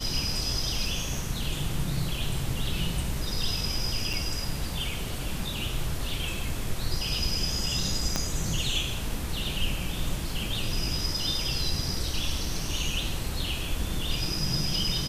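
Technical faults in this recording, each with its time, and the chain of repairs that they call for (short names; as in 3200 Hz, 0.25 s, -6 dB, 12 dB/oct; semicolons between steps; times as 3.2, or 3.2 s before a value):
4.13–4.14 gap 5.9 ms
8.16 pop -11 dBFS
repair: de-click; interpolate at 4.13, 5.9 ms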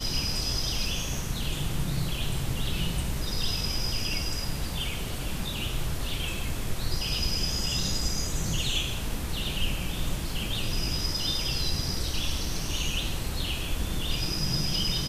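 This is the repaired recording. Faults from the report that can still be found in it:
8.16 pop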